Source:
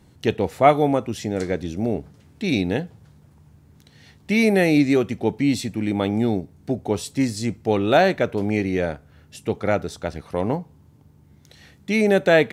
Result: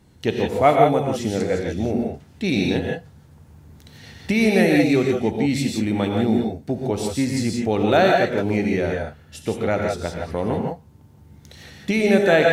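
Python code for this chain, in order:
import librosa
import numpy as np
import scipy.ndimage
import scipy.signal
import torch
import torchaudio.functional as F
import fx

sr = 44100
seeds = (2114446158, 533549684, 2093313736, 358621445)

y = fx.recorder_agc(x, sr, target_db=-11.5, rise_db_per_s=5.4, max_gain_db=30)
y = fx.rev_gated(y, sr, seeds[0], gate_ms=190, shape='rising', drr_db=0.5)
y = F.gain(torch.from_numpy(y), -1.5).numpy()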